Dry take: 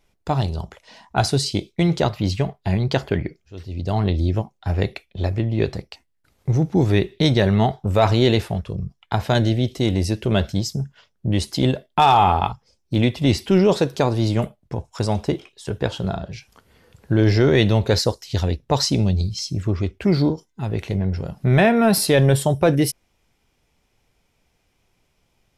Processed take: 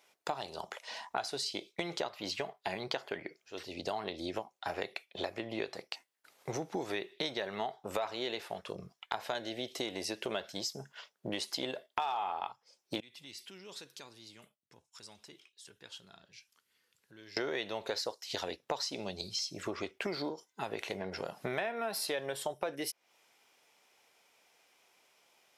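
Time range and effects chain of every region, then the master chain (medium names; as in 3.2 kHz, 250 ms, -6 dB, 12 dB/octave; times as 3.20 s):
13.00–17.37 s: amplifier tone stack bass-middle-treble 6-0-2 + compression 2.5:1, threshold -42 dBFS
whole clip: high-pass 560 Hz 12 dB/octave; dynamic bell 9.3 kHz, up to -5 dB, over -42 dBFS, Q 0.97; compression 6:1, threshold -37 dBFS; trim +3 dB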